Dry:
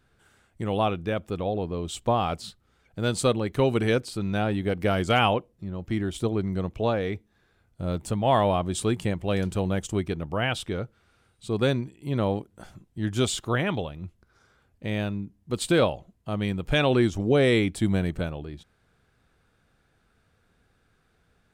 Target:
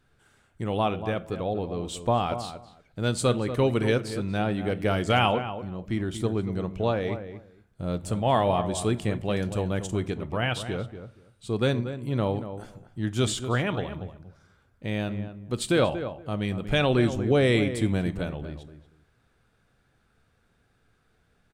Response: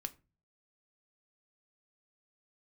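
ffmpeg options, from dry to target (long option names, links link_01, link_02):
-filter_complex "[0:a]asplit=2[link_01][link_02];[link_02]adelay=235,lowpass=frequency=1700:poles=1,volume=-10dB,asplit=2[link_03][link_04];[link_04]adelay=235,lowpass=frequency=1700:poles=1,volume=0.17[link_05];[link_01][link_03][link_05]amix=inputs=3:normalize=0,asplit=2[link_06][link_07];[1:a]atrim=start_sample=2205,asetrate=23814,aresample=44100[link_08];[link_07][link_08]afir=irnorm=-1:irlink=0,volume=-2dB[link_09];[link_06][link_09]amix=inputs=2:normalize=0,volume=-6.5dB"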